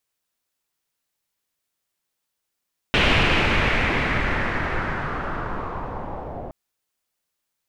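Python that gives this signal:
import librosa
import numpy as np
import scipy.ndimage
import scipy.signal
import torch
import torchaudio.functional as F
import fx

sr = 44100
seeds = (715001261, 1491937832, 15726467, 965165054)

y = fx.riser_noise(sr, seeds[0], length_s=3.57, colour='pink', kind='lowpass', start_hz=2800.0, end_hz=620.0, q=2.5, swell_db=-16.0, law='linear')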